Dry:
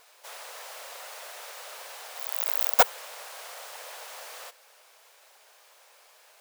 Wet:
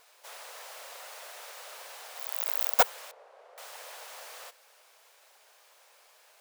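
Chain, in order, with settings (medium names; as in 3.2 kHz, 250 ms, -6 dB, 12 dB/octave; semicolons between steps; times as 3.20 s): 3.11–3.58 s: band-pass filter 450 Hz, Q 1.4; trim -3 dB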